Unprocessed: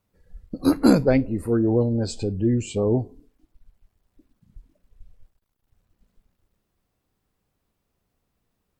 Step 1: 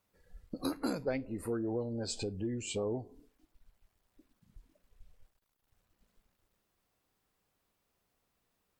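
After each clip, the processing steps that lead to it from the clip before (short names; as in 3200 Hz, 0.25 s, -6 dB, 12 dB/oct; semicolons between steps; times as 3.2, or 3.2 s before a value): compressor 4:1, threshold -28 dBFS, peak gain reduction 15 dB; low shelf 350 Hz -10.5 dB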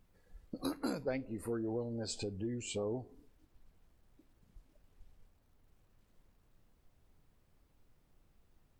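added noise brown -64 dBFS; gain -2.5 dB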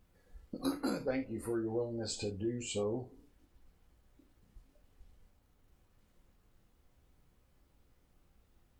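non-linear reverb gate 0.1 s falling, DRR 3 dB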